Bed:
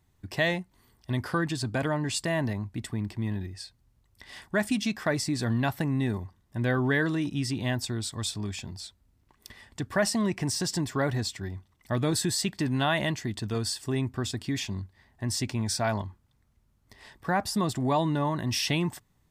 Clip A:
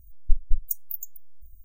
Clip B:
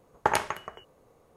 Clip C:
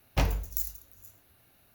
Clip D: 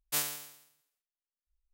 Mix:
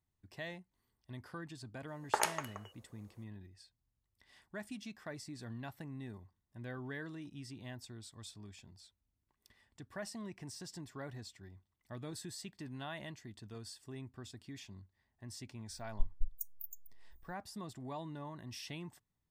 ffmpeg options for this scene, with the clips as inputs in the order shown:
ffmpeg -i bed.wav -i cue0.wav -i cue1.wav -filter_complex "[0:a]volume=-18.5dB[link_01];[2:a]bass=frequency=250:gain=-12,treble=frequency=4000:gain=8,atrim=end=1.36,asetpts=PTS-STARTPTS,volume=-8dB,afade=type=in:duration=0.004:curve=hsin,afade=type=out:start_time=1.356:duration=0.004:curve=hsin,adelay=1880[link_02];[1:a]atrim=end=1.64,asetpts=PTS-STARTPTS,volume=-13.5dB,afade=type=in:duration=0.004:curve=hsin,afade=type=out:start_time=1.636:duration=0.004:curve=hsin,adelay=15700[link_03];[link_01][link_02][link_03]amix=inputs=3:normalize=0" out.wav

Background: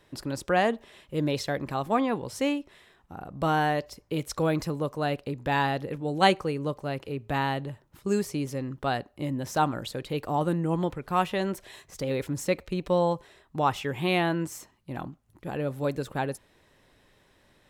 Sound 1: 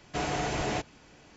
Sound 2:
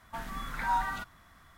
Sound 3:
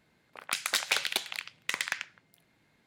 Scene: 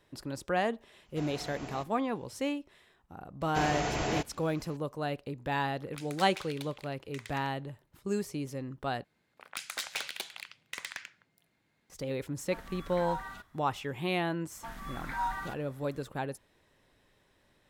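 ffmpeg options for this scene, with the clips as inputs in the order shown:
ffmpeg -i bed.wav -i cue0.wav -i cue1.wav -i cue2.wav -filter_complex "[1:a]asplit=2[link_01][link_02];[3:a]asplit=2[link_03][link_04];[2:a]asplit=2[link_05][link_06];[0:a]volume=-6dB[link_07];[link_04]asoftclip=type=hard:threshold=-21dB[link_08];[link_07]asplit=2[link_09][link_10];[link_09]atrim=end=9.044[link_11];[link_08]atrim=end=2.86,asetpts=PTS-STARTPTS,volume=-6.5dB[link_12];[link_10]atrim=start=11.896[link_13];[link_01]atrim=end=1.36,asetpts=PTS-STARTPTS,volume=-14dB,afade=type=in:duration=0.004:curve=hsin,afade=type=out:start_time=1.356:duration=0.004:curve=hsin,adelay=1020[link_14];[link_02]atrim=end=1.36,asetpts=PTS-STARTPTS,volume=-1dB,afade=type=in:duration=0.004:curve=hsin,afade=type=out:start_time=1.356:duration=0.004:curve=hsin,adelay=150381S[link_15];[link_03]atrim=end=2.86,asetpts=PTS-STARTPTS,volume=-16dB,afade=type=in:duration=0.004:curve=hsin,afade=type=out:start_time=2.856:duration=0.004:curve=hsin,adelay=240345S[link_16];[link_05]atrim=end=1.57,asetpts=PTS-STARTPTS,volume=-8.5dB,afade=type=in:duration=0.004:curve=hsin,afade=type=out:start_time=1.566:duration=0.004:curve=hsin,adelay=12380[link_17];[link_06]atrim=end=1.57,asetpts=PTS-STARTPTS,volume=-4dB,afade=type=in:duration=0.004:curve=hsin,afade=type=out:start_time=1.566:duration=0.004:curve=hsin,adelay=14500[link_18];[link_11][link_12]acrossfade=duration=0.004:curve1=hsin:curve2=hsin[link_19];[link_19][link_13]acrossfade=duration=0.004:curve1=hsin:curve2=hsin[link_20];[link_20][link_14][link_15][link_16][link_17][link_18]amix=inputs=6:normalize=0" out.wav

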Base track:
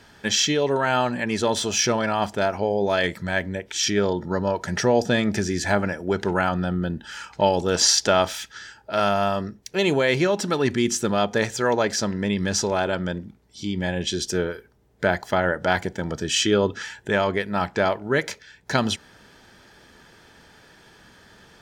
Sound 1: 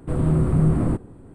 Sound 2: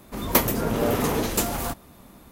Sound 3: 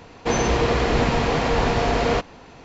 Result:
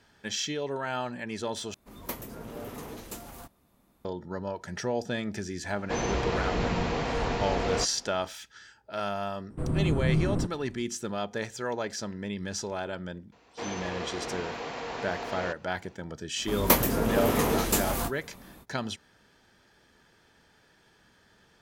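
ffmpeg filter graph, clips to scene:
ffmpeg -i bed.wav -i cue0.wav -i cue1.wav -i cue2.wav -filter_complex "[2:a]asplit=2[link_01][link_02];[3:a]asplit=2[link_03][link_04];[0:a]volume=-11dB[link_05];[link_03]acontrast=52[link_06];[link_04]highpass=frequency=420:poles=1[link_07];[link_02]asplit=2[link_08][link_09];[link_09]adelay=22,volume=-9dB[link_10];[link_08][link_10]amix=inputs=2:normalize=0[link_11];[link_05]asplit=2[link_12][link_13];[link_12]atrim=end=1.744[link_14];[link_01]atrim=end=2.31,asetpts=PTS-STARTPTS,volume=-17dB[link_15];[link_13]atrim=start=4.046[link_16];[link_06]atrim=end=2.64,asetpts=PTS-STARTPTS,volume=-14.5dB,afade=type=in:duration=0.004:curve=hsin,afade=type=out:start_time=2.636:duration=0.004:curve=hsin,adelay=5640[link_17];[1:a]atrim=end=1.34,asetpts=PTS-STARTPTS,volume=-7.5dB,afade=type=in:duration=0.004:curve=hsin,afade=type=out:start_time=1.336:duration=0.004:curve=hsin,adelay=9500[link_18];[link_07]atrim=end=2.64,asetpts=PTS-STARTPTS,volume=-13dB,afade=type=in:duration=0.004:curve=hsin,afade=type=out:start_time=2.636:duration=0.004:curve=hsin,adelay=587412S[link_19];[link_11]atrim=end=2.31,asetpts=PTS-STARTPTS,volume=-2dB,afade=type=in:duration=0.05,afade=type=out:start_time=2.26:duration=0.05,adelay=16350[link_20];[link_14][link_15]acrossfade=duration=0.004:curve1=hsin:curve2=hsin[link_21];[link_21][link_16]acrossfade=duration=0.004:curve1=hsin:curve2=hsin[link_22];[link_22][link_17][link_18][link_19][link_20]amix=inputs=5:normalize=0" out.wav

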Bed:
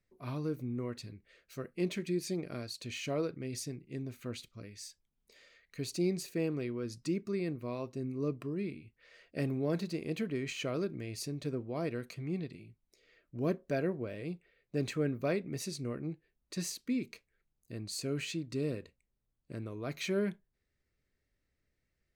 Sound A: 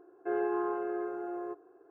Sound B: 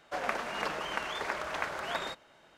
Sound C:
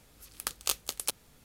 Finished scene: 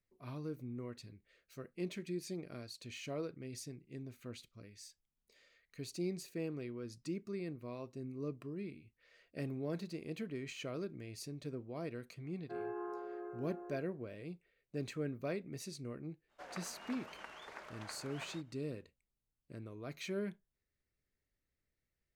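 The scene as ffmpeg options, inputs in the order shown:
ffmpeg -i bed.wav -i cue0.wav -i cue1.wav -filter_complex "[0:a]volume=-7dB[link_01];[1:a]atrim=end=1.9,asetpts=PTS-STARTPTS,volume=-11dB,afade=type=in:duration=0.004:curve=hsin,afade=type=out:start_time=1.896:duration=0.004:curve=hsin,adelay=12240[link_02];[2:a]atrim=end=2.57,asetpts=PTS-STARTPTS,volume=-16dB,afade=type=in:duration=0.05,afade=type=out:start_time=2.52:duration=0.05,adelay=16270[link_03];[link_01][link_02][link_03]amix=inputs=3:normalize=0" out.wav

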